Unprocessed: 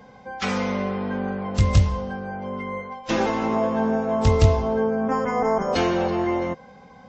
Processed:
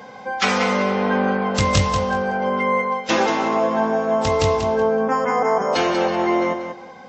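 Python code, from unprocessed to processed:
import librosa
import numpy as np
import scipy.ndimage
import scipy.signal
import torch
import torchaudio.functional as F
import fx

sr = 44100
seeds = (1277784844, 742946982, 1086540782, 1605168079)

y = fx.highpass(x, sr, hz=440.0, slope=6)
y = fx.rider(y, sr, range_db=5, speed_s=0.5)
y = fx.echo_feedback(y, sr, ms=188, feedback_pct=21, wet_db=-8.0)
y = y * 10.0 ** (7.0 / 20.0)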